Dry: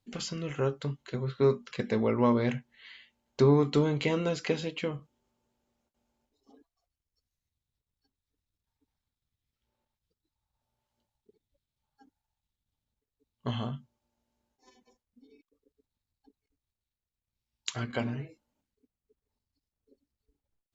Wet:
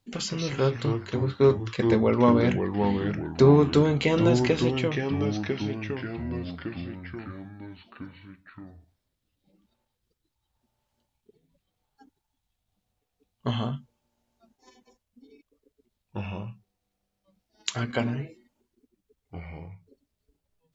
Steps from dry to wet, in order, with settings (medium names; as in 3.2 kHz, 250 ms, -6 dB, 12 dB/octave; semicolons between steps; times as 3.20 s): ever faster or slower copies 148 ms, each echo -3 st, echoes 3, each echo -6 dB; trim +5 dB